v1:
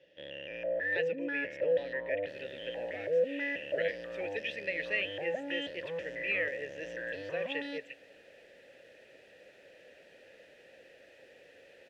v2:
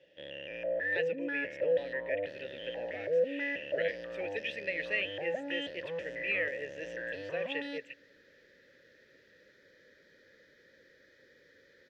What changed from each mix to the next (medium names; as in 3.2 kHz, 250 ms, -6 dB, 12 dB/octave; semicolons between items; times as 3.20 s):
second sound: add static phaser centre 2.7 kHz, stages 6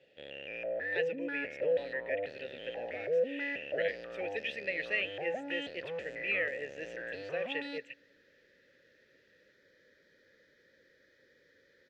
first sound: remove rippled EQ curve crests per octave 1.2, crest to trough 8 dB; second sound -4.0 dB